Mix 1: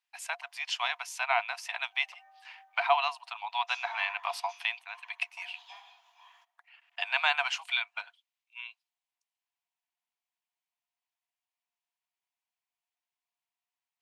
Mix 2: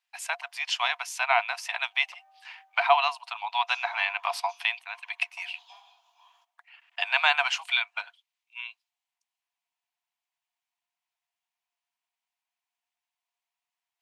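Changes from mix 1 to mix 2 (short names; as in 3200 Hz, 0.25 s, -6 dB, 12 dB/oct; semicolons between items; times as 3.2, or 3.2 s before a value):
speech +4.5 dB; background: add bell 1900 Hz -14 dB 0.58 oct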